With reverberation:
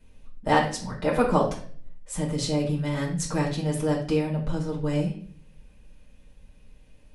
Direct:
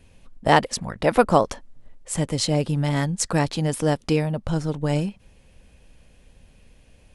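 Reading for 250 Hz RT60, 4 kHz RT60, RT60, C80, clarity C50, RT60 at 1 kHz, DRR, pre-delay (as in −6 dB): 0.65 s, 0.45 s, 0.50 s, 12.0 dB, 7.5 dB, 0.45 s, −5.0 dB, 5 ms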